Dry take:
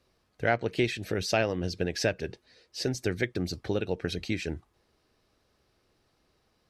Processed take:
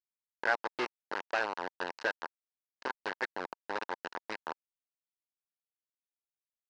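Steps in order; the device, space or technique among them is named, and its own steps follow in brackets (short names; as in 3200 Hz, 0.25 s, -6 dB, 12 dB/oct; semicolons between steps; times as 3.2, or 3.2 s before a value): hand-held game console (bit-crush 4-bit; speaker cabinet 440–4400 Hz, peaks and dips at 650 Hz -3 dB, 930 Hz +7 dB, 1600 Hz +7 dB, 2300 Hz -6 dB, 3400 Hz -8 dB); gain -5.5 dB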